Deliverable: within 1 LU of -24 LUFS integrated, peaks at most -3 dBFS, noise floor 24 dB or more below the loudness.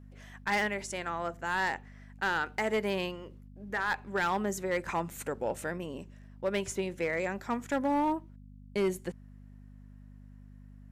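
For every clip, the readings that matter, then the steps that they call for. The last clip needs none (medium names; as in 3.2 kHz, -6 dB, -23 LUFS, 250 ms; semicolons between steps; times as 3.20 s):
clipped samples 1.0%; clipping level -23.0 dBFS; hum 50 Hz; highest harmonic 250 Hz; hum level -49 dBFS; loudness -33.0 LUFS; peak level -23.0 dBFS; loudness target -24.0 LUFS
-> clip repair -23 dBFS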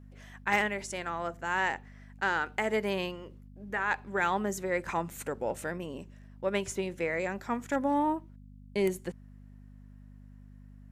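clipped samples 0.0%; hum 50 Hz; highest harmonic 250 Hz; hum level -49 dBFS
-> de-hum 50 Hz, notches 5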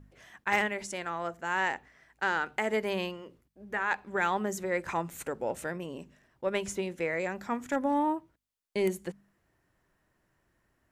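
hum not found; loudness -32.0 LUFS; peak level -14.0 dBFS; loudness target -24.0 LUFS
-> trim +8 dB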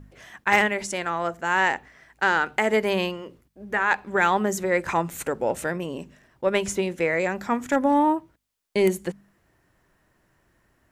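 loudness -24.0 LUFS; peak level -6.0 dBFS; noise floor -66 dBFS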